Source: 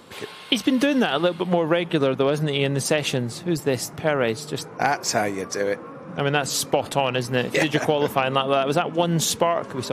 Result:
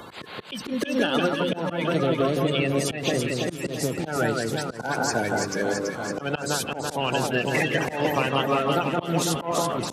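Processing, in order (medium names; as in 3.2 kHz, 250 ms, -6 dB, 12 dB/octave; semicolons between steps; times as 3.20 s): coarse spectral quantiser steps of 30 dB; echo whose repeats swap between lows and highs 166 ms, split 1.9 kHz, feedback 77%, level -3 dB; slow attack 157 ms; three bands compressed up and down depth 40%; trim -3 dB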